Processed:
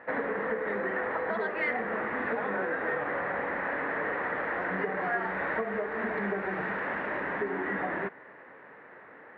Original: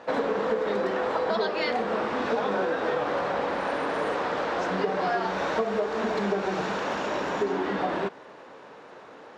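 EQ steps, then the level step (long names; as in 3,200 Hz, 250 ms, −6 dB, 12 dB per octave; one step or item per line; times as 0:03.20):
low-pass with resonance 1,900 Hz, resonance Q 5.8
high-frequency loss of the air 110 metres
low-shelf EQ 390 Hz +4 dB
−8.0 dB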